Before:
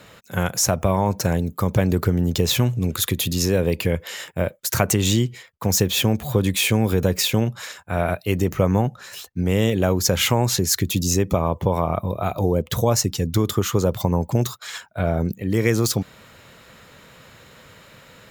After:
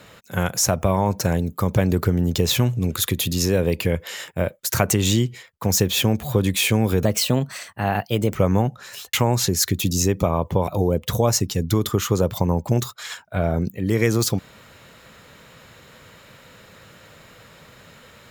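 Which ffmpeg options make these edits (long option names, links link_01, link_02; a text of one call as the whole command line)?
ffmpeg -i in.wav -filter_complex "[0:a]asplit=5[link_01][link_02][link_03][link_04][link_05];[link_01]atrim=end=7.054[link_06];[link_02]atrim=start=7.05:end=8.55,asetpts=PTS-STARTPTS,asetrate=50715,aresample=44100[link_07];[link_03]atrim=start=8.546:end=9.332[link_08];[link_04]atrim=start=10.238:end=11.782[link_09];[link_05]atrim=start=12.308[link_10];[link_06][link_07]acrossfade=duration=0.004:curve1=hsin:curve2=hsin[link_11];[link_11][link_08]acrossfade=duration=0.004:curve1=hsin:curve2=hsin[link_12];[link_12][link_09]acrossfade=duration=0.004:curve1=hsin:curve2=hsin[link_13];[link_13][link_10]acrossfade=duration=0.004:curve1=hsin:curve2=hsin" out.wav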